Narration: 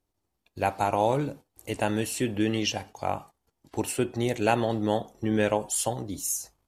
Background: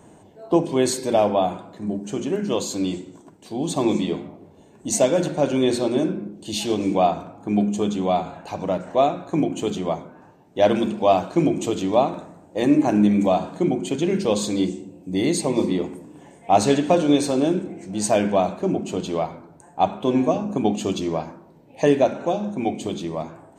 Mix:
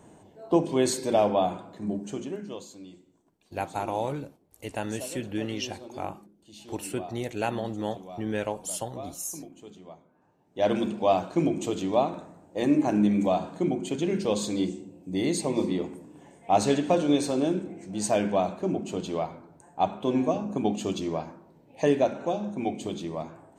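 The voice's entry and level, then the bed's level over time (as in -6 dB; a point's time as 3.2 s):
2.95 s, -5.5 dB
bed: 2.01 s -4 dB
2.85 s -22 dB
10.07 s -22 dB
10.72 s -5.5 dB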